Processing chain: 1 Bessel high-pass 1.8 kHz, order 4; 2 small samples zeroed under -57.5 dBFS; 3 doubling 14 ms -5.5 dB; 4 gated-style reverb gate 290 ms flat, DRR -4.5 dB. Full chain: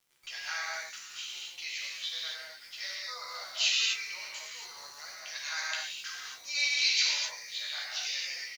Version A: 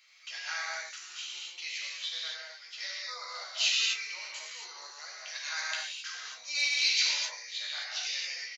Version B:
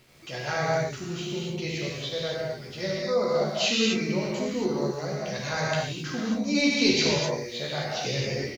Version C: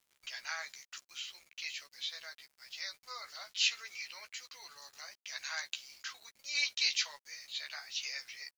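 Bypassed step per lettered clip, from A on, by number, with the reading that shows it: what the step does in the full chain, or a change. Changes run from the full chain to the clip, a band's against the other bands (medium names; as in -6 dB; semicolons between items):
2, distortion -25 dB; 1, 500 Hz band +26.5 dB; 4, momentary loudness spread change +1 LU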